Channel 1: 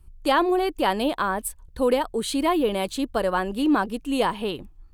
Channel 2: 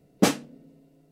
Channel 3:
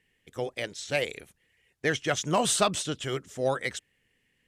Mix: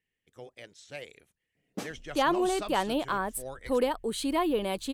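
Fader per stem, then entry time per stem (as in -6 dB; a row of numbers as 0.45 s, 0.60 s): -5.5 dB, -17.5 dB, -14.0 dB; 1.90 s, 1.55 s, 0.00 s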